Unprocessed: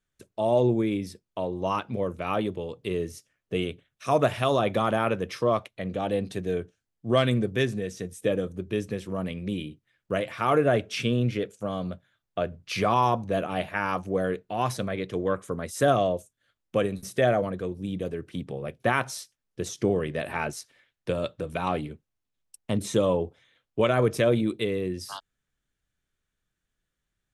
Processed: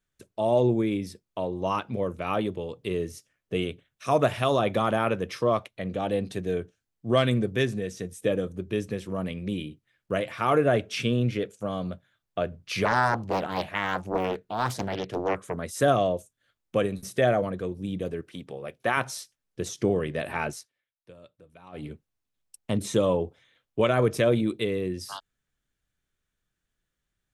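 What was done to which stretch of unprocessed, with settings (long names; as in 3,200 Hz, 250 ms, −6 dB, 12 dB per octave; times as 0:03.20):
0:12.85–0:15.57: highs frequency-modulated by the lows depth 0.69 ms
0:18.21–0:18.97: low-shelf EQ 260 Hz −11 dB
0:20.53–0:21.89: duck −21.5 dB, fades 0.17 s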